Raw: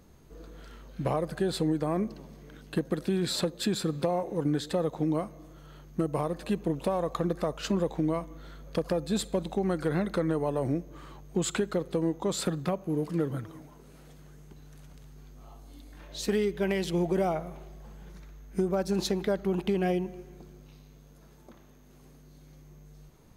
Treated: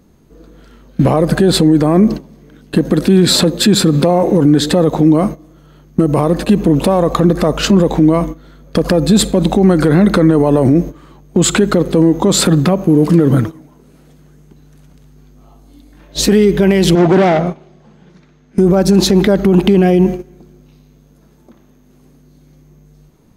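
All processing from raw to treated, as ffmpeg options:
ffmpeg -i in.wav -filter_complex "[0:a]asettb=1/sr,asplit=3[link_01][link_02][link_03];[link_01]atrim=end=16.954[link_04];[link_02]atrim=start=16.95:end=18.58,asetpts=PTS-STARTPTS,afade=type=in:duration=0.004:curve=qsin,afade=type=out:start_time=1.626:duration=0.004:curve=qsin,highshelf=frequency=3200:gain=5.5,asoftclip=type=hard:threshold=-31.5dB,highpass=110,lowpass=4400[link_05];[link_03]atrim=start=18.576[link_06];[link_04][link_05]acrossfade=duration=0.004:curve1=hsin:curve2=qsin[link_07];[link_07][link_06]acrossfade=duration=0.004:curve1=qsin:curve2=hsin,agate=range=-17dB:threshold=-40dB:ratio=16:detection=peak,equalizer=frequency=240:width_type=o:width=1.4:gain=7,alimiter=level_in=22dB:limit=-1dB:release=50:level=0:latency=1,volume=-1dB" out.wav

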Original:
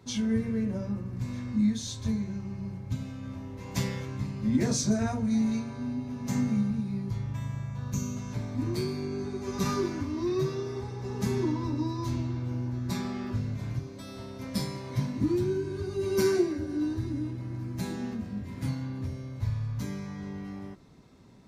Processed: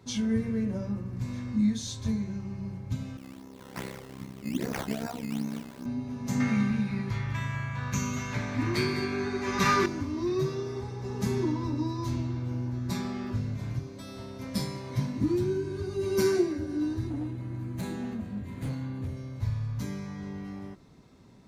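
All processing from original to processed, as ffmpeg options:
ffmpeg -i in.wav -filter_complex "[0:a]asettb=1/sr,asplit=3[link_01][link_02][link_03];[link_01]atrim=end=3.174[link_04];[link_02]atrim=start=3.17:end=5.86,asetpts=PTS-STARTPTS,afade=type=in:duration=0.004:curve=qsin,afade=type=out:start_time=2.686:duration=0.004:curve=qsin,highpass=210,tremolo=f=66:d=0.889,acrusher=samples=13:mix=1:aa=0.000001:lfo=1:lforange=13:lforate=2.5[link_05];[link_03]atrim=start=5.856[link_06];[link_04][link_05]acrossfade=duration=0.004:curve1=hsin:curve2=qsin[link_07];[link_07][link_06]acrossfade=duration=0.004:curve1=qsin:curve2=hsin,asettb=1/sr,asplit=3[link_08][link_09][link_10];[link_08]atrim=end=6.404[link_11];[link_09]atrim=start=6.4:end=9.86,asetpts=PTS-STARTPTS,afade=type=in:duration=0.004:curve=qsin,afade=type=out:start_time=3.456:duration=0.004:curve=qsin,equalizer=frequency=1900:width=0.63:gain=15,aecho=1:1:202:0.316,atrim=end_sample=152586[link_12];[link_10]atrim=start=9.856[link_13];[link_11][link_12]acrossfade=duration=0.004:curve1=hsin:curve2=qsin[link_14];[link_14][link_13]acrossfade=duration=0.004:curve1=qsin:curve2=hsin,asettb=1/sr,asplit=3[link_15][link_16][link_17];[link_15]atrim=end=17.074[link_18];[link_16]atrim=start=17.07:end=19.17,asetpts=PTS-STARTPTS,afade=type=in:duration=0.004:curve=qsin,afade=type=out:start_time=2.096:duration=0.004:curve=qsin,equalizer=frequency=5300:width_type=o:width=0.3:gain=-11,asoftclip=type=hard:threshold=-28.5dB[link_19];[link_17]atrim=start=19.166[link_20];[link_18][link_19]acrossfade=duration=0.004:curve1=hsin:curve2=qsin[link_21];[link_21][link_20]acrossfade=duration=0.004:curve1=qsin:curve2=hsin" out.wav

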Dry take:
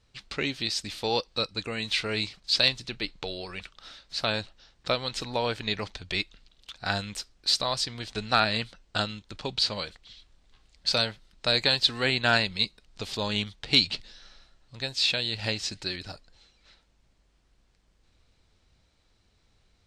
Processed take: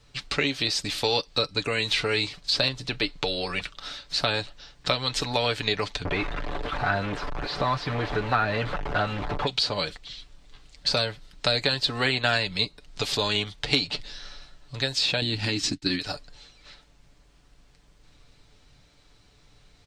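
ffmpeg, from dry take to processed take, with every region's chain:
ffmpeg -i in.wav -filter_complex "[0:a]asettb=1/sr,asplit=3[link_01][link_02][link_03];[link_01]atrim=end=6.054[link_04];[link_02]atrim=start=6.05:end=9.47,asetpts=PTS-STARTPTS,afade=type=in:duration=0.004:curve=qsin,afade=type=out:start_time=3.416:duration=0.004:curve=qsin,aeval=exprs='val(0)+0.5*0.0631*sgn(val(0))':channel_layout=same,lowpass=1200,aphaser=in_gain=1:out_gain=1:delay=1.2:decay=0.22:speed=2:type=triangular[link_05];[link_03]atrim=start=9.466[link_06];[link_04][link_05]acrossfade=duration=0.004:curve1=hsin:curve2=qsin[link_07];[link_07][link_06]acrossfade=duration=0.004:curve1=qsin:curve2=hsin,asettb=1/sr,asplit=3[link_08][link_09][link_10];[link_08]atrim=end=15.214[link_11];[link_09]atrim=start=15.21:end=15.99,asetpts=PTS-STARTPTS,afade=type=in:duration=0.004:curve=qsin,afade=type=out:start_time=0.776:duration=0.004:curve=qsin,agate=range=-33dB:threshold=-34dB:ratio=3:release=100:detection=peak,lowshelf=frequency=390:width_type=q:width=3:gain=10.5,acompressor=threshold=-23dB:ratio=6:attack=3.2:release=140:knee=1:detection=peak[link_12];[link_10]atrim=start=15.986[link_13];[link_11][link_12]acrossfade=duration=0.004:curve1=hsin:curve2=qsin[link_14];[link_14][link_13]acrossfade=duration=0.004:curve1=qsin:curve2=hsin,aecho=1:1:6.9:0.48,acrossover=split=380|1300[link_15][link_16][link_17];[link_15]acompressor=threshold=-41dB:ratio=4[link_18];[link_16]acompressor=threshold=-37dB:ratio=4[link_19];[link_17]acompressor=threshold=-33dB:ratio=4[link_20];[link_18][link_19][link_20]amix=inputs=3:normalize=0,volume=8.5dB" out.wav

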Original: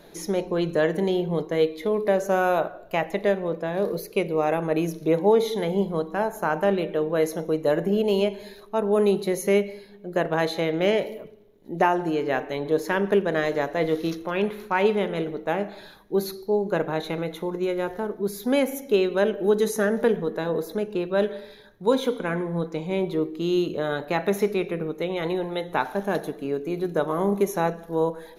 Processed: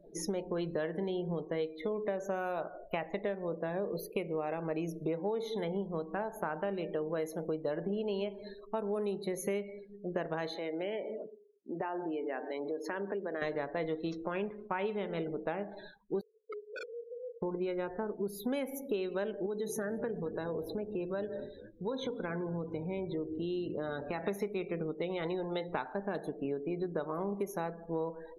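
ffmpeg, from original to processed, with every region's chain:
ffmpeg -i in.wav -filter_complex "[0:a]asettb=1/sr,asplit=3[link_01][link_02][link_03];[link_01]atrim=end=10.554[link_04];[link_02]atrim=start=10.55:end=13.42,asetpts=PTS-STARTPTS,afade=type=in:duration=0.004:curve=qsin,afade=type=out:start_time=2.866:duration=0.004:curve=qsin,highpass=frequency=210:width=0.5412,highpass=frequency=210:width=1.3066,acompressor=threshold=-33dB:ratio=2.5:attack=3.2:release=140:knee=1:detection=peak[link_05];[link_03]atrim=start=13.416[link_06];[link_04][link_05]acrossfade=duration=0.004:curve1=hsin:curve2=qsin[link_07];[link_07][link_06]acrossfade=duration=0.004:curve1=qsin:curve2=hsin,asettb=1/sr,asplit=3[link_08][link_09][link_10];[link_08]atrim=end=14.284[link_11];[link_09]atrim=start=14.28:end=14.79,asetpts=PTS-STARTPTS,afade=type=in:duration=0.004:curve=qsin,afade=type=out:start_time=0.506:duration=0.004:curve=qsin,lowpass=frequency=2800:poles=1,aeval=exprs='sgn(val(0))*max(abs(val(0))-0.00447,0)':channel_layout=same[link_12];[link_10]atrim=start=14.786[link_13];[link_11][link_12]acrossfade=duration=0.004:curve1=hsin:curve2=qsin[link_14];[link_14][link_13]acrossfade=duration=0.004:curve1=qsin:curve2=hsin,asettb=1/sr,asplit=3[link_15][link_16][link_17];[link_15]atrim=end=16.214[link_18];[link_16]atrim=start=16.21:end=17.42,asetpts=PTS-STARTPTS,afade=type=in:duration=0.004:curve=qsin,afade=type=out:start_time=1.206:duration=0.004:curve=qsin,asuperpass=centerf=470:order=12:qfactor=5.1,aeval=exprs='(mod(16.8*val(0)+1,2)-1)/16.8':channel_layout=same,acompressor=threshold=-45dB:ratio=2:attack=3.2:release=140:knee=1:detection=peak[link_19];[link_17]atrim=start=17.416[link_20];[link_18][link_19]acrossfade=duration=0.004:curve1=hsin:curve2=qsin[link_21];[link_21][link_20]acrossfade=duration=0.004:curve1=qsin:curve2=hsin,asettb=1/sr,asplit=3[link_22][link_23][link_24];[link_22]atrim=end=19.464[link_25];[link_23]atrim=start=19.46:end=24.24,asetpts=PTS-STARTPTS,afade=type=in:duration=0.004:curve=qsin,afade=type=out:start_time=4.776:duration=0.004:curve=qsin,acompressor=threshold=-33dB:ratio=2:attack=3.2:release=140:knee=1:detection=peak,asplit=7[link_26][link_27][link_28][link_29][link_30][link_31][link_32];[link_27]adelay=220,afreqshift=-50,volume=-16.5dB[link_33];[link_28]adelay=440,afreqshift=-100,volume=-20.8dB[link_34];[link_29]adelay=660,afreqshift=-150,volume=-25.1dB[link_35];[link_30]adelay=880,afreqshift=-200,volume=-29.4dB[link_36];[link_31]adelay=1100,afreqshift=-250,volume=-33.7dB[link_37];[link_32]adelay=1320,afreqshift=-300,volume=-38dB[link_38];[link_26][link_33][link_34][link_35][link_36][link_37][link_38]amix=inputs=7:normalize=0,atrim=end_sample=210798[link_39];[link_24]atrim=start=24.236[link_40];[link_25][link_39]acrossfade=duration=0.004:curve1=hsin:curve2=qsin[link_41];[link_41][link_40]acrossfade=duration=0.004:curve1=qsin:curve2=hsin,afftdn=noise_reduction=34:noise_floor=-42,acompressor=threshold=-30dB:ratio=6,volume=-2dB" out.wav

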